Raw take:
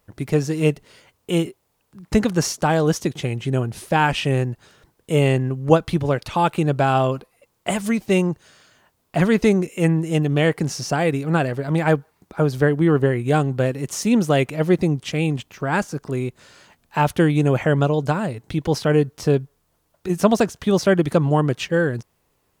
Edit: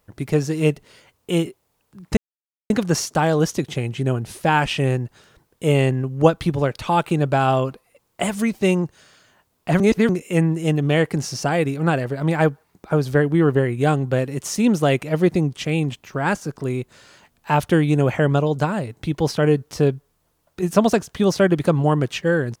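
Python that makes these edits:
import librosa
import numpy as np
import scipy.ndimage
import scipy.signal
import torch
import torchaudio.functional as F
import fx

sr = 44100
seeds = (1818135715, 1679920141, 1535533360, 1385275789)

y = fx.edit(x, sr, fx.insert_silence(at_s=2.17, length_s=0.53),
    fx.reverse_span(start_s=9.27, length_s=0.29), tone=tone)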